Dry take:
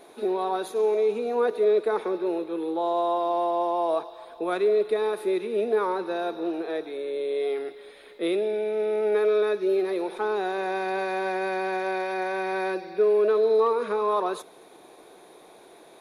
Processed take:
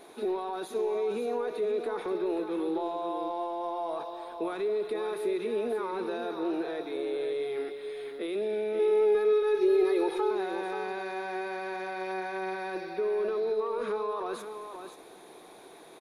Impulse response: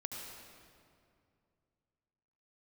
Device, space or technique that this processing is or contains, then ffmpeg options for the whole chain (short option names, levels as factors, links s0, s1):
de-esser from a sidechain: -filter_complex "[0:a]asplit=2[s0][s1];[s1]highpass=f=5300:p=1,apad=whole_len=705702[s2];[s0][s2]sidechaincompress=threshold=0.00447:ratio=8:attack=2.9:release=27,equalizer=f=580:w=3.2:g=-3.5,asettb=1/sr,asplit=3[s3][s4][s5];[s3]atrim=end=8.794[s6];[s4]atrim=start=8.79:end=10.31,asetpts=PTS-STARTPTS,afade=t=in:d=0.004:c=qsin,afade=t=out:st=1.516:d=0.004:c=qsin,aecho=1:1:2.4:0.98,atrim=end_sample=67032[s7];[s5]atrim=start=10.306[s8];[s6][s7]acrossfade=d=0.004:c1=hsin:c2=qsin[s9];[s9][s8]acrossfade=d=0.004:c1=qsin:c2=hsin,aecho=1:1:531:0.398"